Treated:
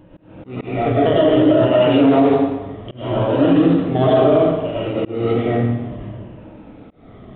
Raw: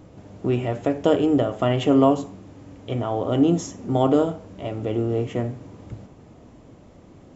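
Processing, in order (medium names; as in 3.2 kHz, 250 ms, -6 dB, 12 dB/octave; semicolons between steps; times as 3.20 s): drifting ripple filter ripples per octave 1.3, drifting -0.65 Hz, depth 10 dB; in parallel at -12 dB: decimation with a swept rate 36×, swing 100% 0.45 Hz; on the sum: reverberation RT60 1.1 s, pre-delay 65 ms, DRR -8.5 dB; resampled via 8 kHz; peak limiter -3 dBFS, peak gain reduction 8.5 dB; slow attack 218 ms; trim -2 dB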